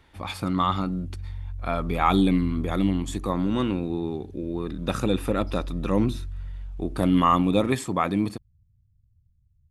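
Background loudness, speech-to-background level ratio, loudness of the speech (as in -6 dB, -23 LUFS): -38.5 LUFS, 13.0 dB, -25.5 LUFS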